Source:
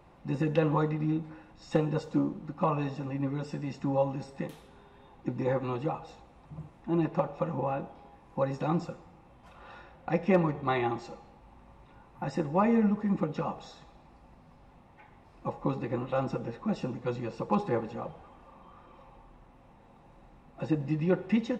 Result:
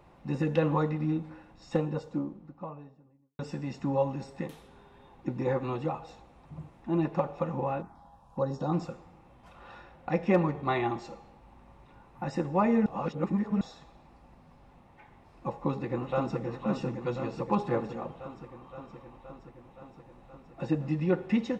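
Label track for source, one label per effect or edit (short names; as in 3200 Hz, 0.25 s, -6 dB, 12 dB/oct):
1.220000	3.390000	studio fade out
7.820000	8.730000	envelope phaser lowest notch 300 Hz, up to 2300 Hz, full sweep at -30 dBFS
12.860000	13.610000	reverse
15.500000	16.390000	echo throw 0.52 s, feedback 75%, level -7 dB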